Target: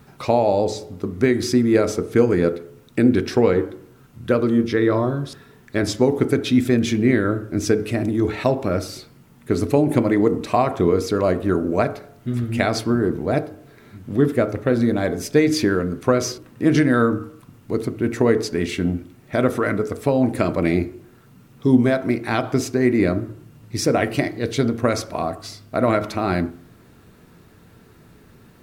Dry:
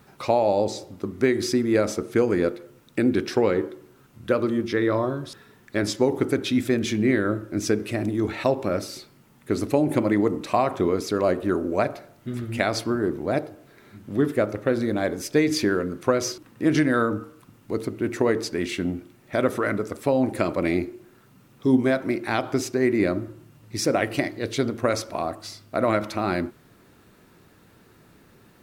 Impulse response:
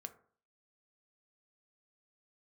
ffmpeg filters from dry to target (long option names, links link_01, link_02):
-filter_complex "[0:a]asplit=2[link_01][link_02];[1:a]atrim=start_sample=2205,lowshelf=frequency=220:gain=10.5[link_03];[link_02][link_03]afir=irnorm=-1:irlink=0,volume=6.5dB[link_04];[link_01][link_04]amix=inputs=2:normalize=0,volume=-4.5dB"